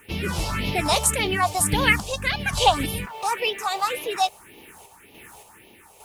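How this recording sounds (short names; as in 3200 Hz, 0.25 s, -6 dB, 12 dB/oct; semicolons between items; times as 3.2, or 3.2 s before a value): a quantiser's noise floor 10-bit, dither triangular; phasing stages 4, 1.8 Hz, lowest notch 260–1500 Hz; random-step tremolo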